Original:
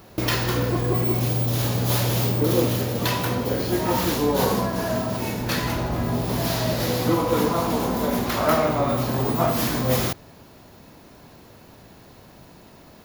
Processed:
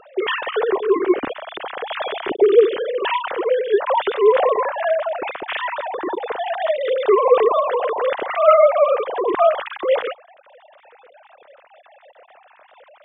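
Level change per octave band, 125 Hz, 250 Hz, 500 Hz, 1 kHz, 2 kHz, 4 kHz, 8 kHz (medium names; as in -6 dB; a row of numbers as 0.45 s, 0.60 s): under -30 dB, -5.0 dB, +9.0 dB, +5.5 dB, +3.5 dB, -2.5 dB, under -40 dB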